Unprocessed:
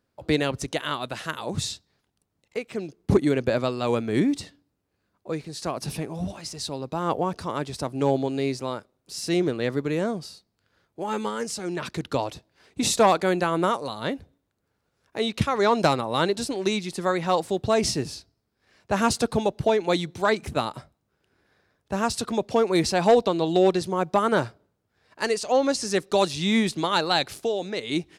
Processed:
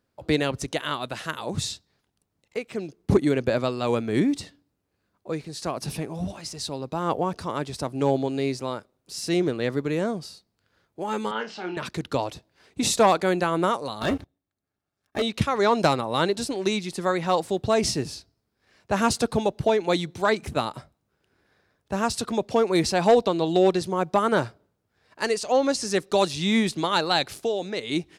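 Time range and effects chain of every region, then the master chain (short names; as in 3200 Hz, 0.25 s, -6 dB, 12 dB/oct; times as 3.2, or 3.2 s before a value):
11.31–11.77 speaker cabinet 270–4000 Hz, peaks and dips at 500 Hz -6 dB, 830 Hz +8 dB, 1500 Hz +4 dB, 2900 Hz +8 dB + flutter echo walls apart 4.7 m, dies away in 0.21 s
14.01–15.22 AM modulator 190 Hz, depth 70% + sample leveller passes 3 + notch comb 490 Hz
whole clip: dry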